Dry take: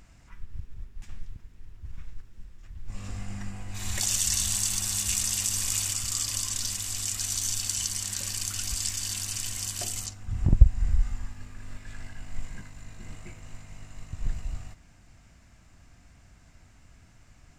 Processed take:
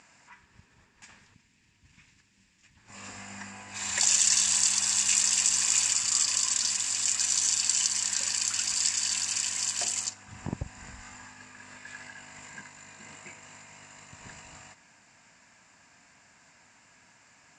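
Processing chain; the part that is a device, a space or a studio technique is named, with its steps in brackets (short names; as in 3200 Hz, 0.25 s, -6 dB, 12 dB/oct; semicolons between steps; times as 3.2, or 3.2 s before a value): 1.34–2.77 band shelf 790 Hz -10 dB 2.4 oct; full-range speaker at full volume (Doppler distortion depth 0.28 ms; speaker cabinet 250–8400 Hz, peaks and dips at 340 Hz -5 dB, 950 Hz +8 dB, 1700 Hz +7 dB, 2500 Hz +6 dB, 4800 Hz +5 dB, 7300 Hz +8 dB)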